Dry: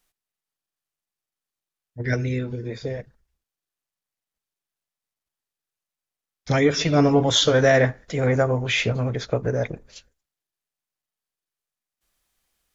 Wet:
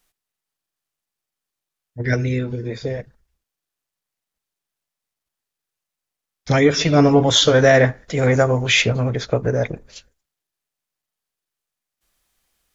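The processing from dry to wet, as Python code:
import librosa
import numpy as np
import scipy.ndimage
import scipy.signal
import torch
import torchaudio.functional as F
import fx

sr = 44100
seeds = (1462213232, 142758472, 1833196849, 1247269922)

y = fx.high_shelf(x, sr, hz=3700.0, db=8.5, at=(8.17, 8.82))
y = F.gain(torch.from_numpy(y), 4.0).numpy()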